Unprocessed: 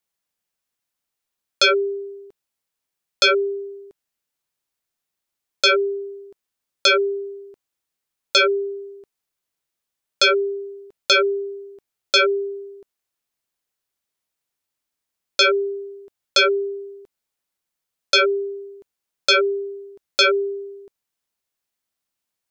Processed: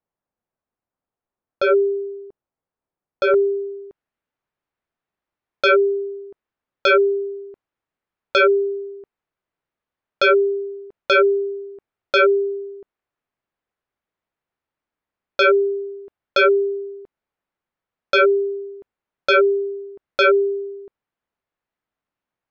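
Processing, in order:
low-pass filter 1,000 Hz 12 dB per octave, from 0:03.34 1,800 Hz
level +4.5 dB

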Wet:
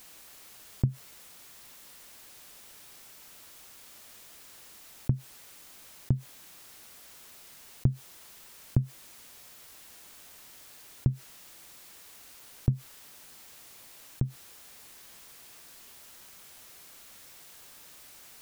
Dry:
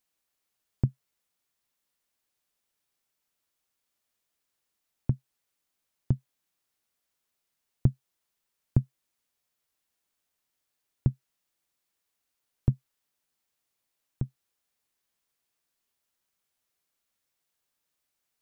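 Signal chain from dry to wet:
envelope flattener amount 50%
level −2 dB

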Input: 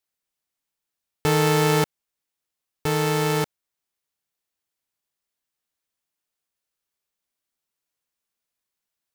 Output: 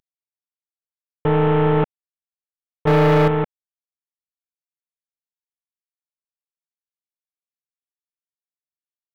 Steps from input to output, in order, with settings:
variable-slope delta modulation 16 kbit/s
0:02.87–0:03.28: leveller curve on the samples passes 3
level +4.5 dB

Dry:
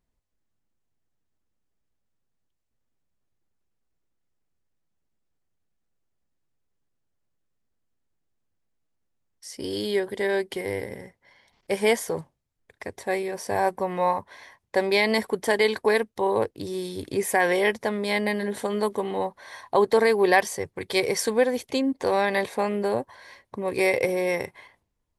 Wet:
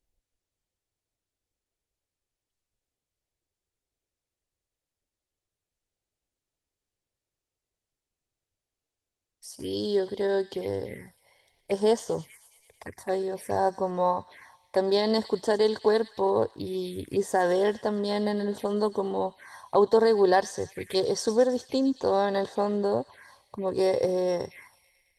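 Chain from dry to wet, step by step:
delay with a high-pass on its return 109 ms, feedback 66%, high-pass 2,200 Hz, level −12 dB
phaser swept by the level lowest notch 200 Hz, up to 2,300 Hz, full sweep at −25.5 dBFS
Opus 32 kbit/s 48,000 Hz

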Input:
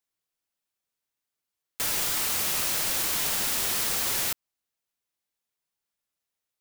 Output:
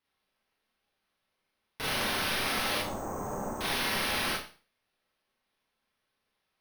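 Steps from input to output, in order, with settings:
0:02.78–0:03.61: low-pass filter 1,000 Hz 24 dB per octave
brickwall limiter −24.5 dBFS, peak gain reduction 11 dB
bad sample-rate conversion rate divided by 6×, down none, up hold
hard clipping −31 dBFS, distortion −14 dB
four-comb reverb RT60 0.38 s, combs from 29 ms, DRR −4.5 dB
level −1 dB

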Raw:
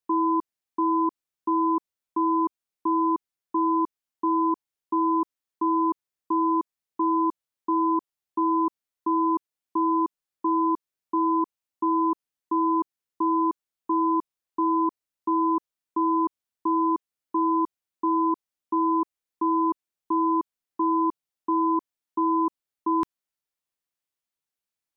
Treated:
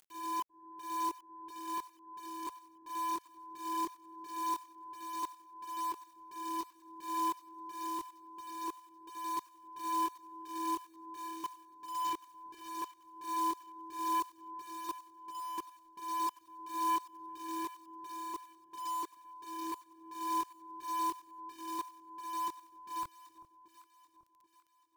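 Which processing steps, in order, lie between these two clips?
0:12.07–0:12.66: running median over 25 samples
parametric band 260 Hz −15 dB 0.93 octaves
upward compression, threshold −42 dBFS
volume swells 385 ms
multi-voice chorus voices 4, 0.1 Hz, delay 22 ms, depth 1.7 ms
log-companded quantiser 4 bits
soft clipping −23.5 dBFS, distortion −21 dB
delay that swaps between a low-pass and a high-pass 392 ms, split 1,000 Hz, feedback 65%, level −12.5 dB
level −1 dB

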